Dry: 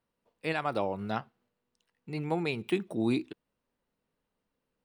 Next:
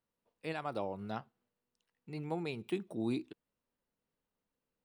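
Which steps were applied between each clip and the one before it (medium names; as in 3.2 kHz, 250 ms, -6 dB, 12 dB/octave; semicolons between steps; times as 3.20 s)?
dynamic bell 2 kHz, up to -4 dB, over -48 dBFS, Q 1; trim -6.5 dB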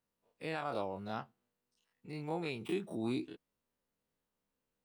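every event in the spectrogram widened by 60 ms; trim -3 dB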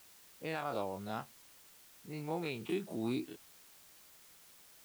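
level-controlled noise filter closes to 310 Hz, open at -37 dBFS; word length cut 10-bit, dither triangular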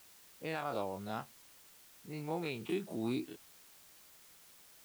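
no audible change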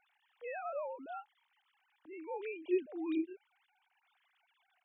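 formants replaced by sine waves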